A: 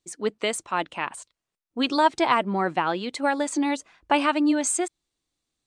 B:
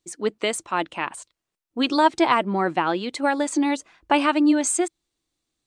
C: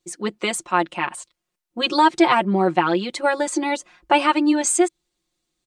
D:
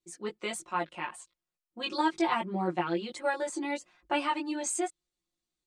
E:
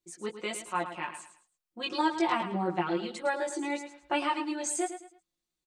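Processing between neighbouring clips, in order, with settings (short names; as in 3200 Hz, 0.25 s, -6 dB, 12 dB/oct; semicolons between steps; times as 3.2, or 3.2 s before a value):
bell 330 Hz +4.5 dB 0.27 oct; gain +1.5 dB
comb 5.6 ms, depth 98%
chorus voices 2, 0.75 Hz, delay 18 ms, depth 1.2 ms; gain -9 dB
feedback echo 0.108 s, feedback 31%, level -10.5 dB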